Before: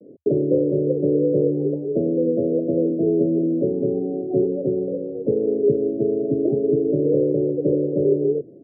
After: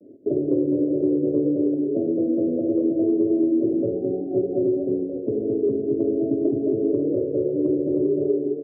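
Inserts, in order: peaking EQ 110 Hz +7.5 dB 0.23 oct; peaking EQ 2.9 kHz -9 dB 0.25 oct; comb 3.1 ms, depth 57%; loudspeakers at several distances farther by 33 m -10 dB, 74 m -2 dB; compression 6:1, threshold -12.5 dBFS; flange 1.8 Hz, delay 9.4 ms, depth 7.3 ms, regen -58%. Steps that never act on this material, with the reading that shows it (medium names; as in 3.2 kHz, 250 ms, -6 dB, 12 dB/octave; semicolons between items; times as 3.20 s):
peaking EQ 2.9 kHz: input has nothing above 680 Hz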